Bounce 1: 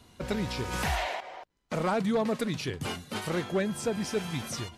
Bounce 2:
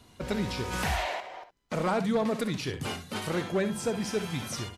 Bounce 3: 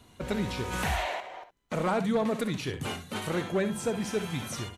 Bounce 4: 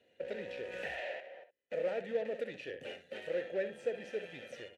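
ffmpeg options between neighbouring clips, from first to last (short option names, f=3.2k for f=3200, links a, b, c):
-af "aecho=1:1:60|70:0.237|0.211"
-af "equalizer=f=5k:w=4.6:g=-7"
-filter_complex "[0:a]aeval=exprs='0.119*(cos(1*acos(clip(val(0)/0.119,-1,1)))-cos(1*PI/2))+0.0106*(cos(8*acos(clip(val(0)/0.119,-1,1)))-cos(8*PI/2))':c=same,asplit=3[a][b][c];[a]bandpass=f=530:t=q:w=8,volume=0dB[d];[b]bandpass=f=1.84k:t=q:w=8,volume=-6dB[e];[c]bandpass=f=2.48k:t=q:w=8,volume=-9dB[f];[d][e][f]amix=inputs=3:normalize=0,volume=2.5dB"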